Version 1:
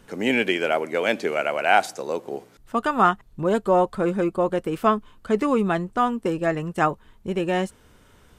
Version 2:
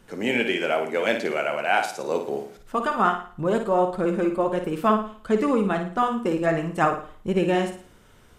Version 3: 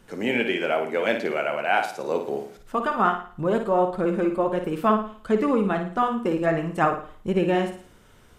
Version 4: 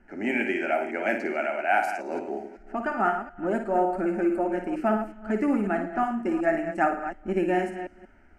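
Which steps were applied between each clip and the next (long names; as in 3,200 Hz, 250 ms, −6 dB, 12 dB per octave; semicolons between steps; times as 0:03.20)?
speech leveller within 4 dB 0.5 s; flanger 1.5 Hz, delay 5 ms, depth 4.9 ms, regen −58%; on a send: flutter between parallel walls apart 9.5 metres, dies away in 0.45 s; on the sum: level +2.5 dB
dynamic equaliser 7,500 Hz, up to −7 dB, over −48 dBFS, Q 0.72
delay that plays each chunk backwards 183 ms, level −10 dB; phaser with its sweep stopped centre 720 Hz, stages 8; low-pass that shuts in the quiet parts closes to 2,400 Hz, open at −19.5 dBFS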